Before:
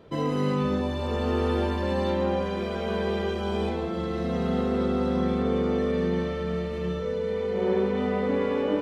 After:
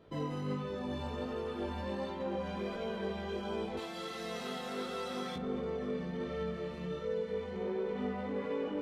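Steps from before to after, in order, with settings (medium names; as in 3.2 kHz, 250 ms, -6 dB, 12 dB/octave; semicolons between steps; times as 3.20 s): 3.77–5.36 s: tilt EQ +4.5 dB/octave; peak limiter -21.5 dBFS, peak gain reduction 8 dB; chorus 1.4 Hz, delay 18 ms, depth 3.5 ms; trim -4.5 dB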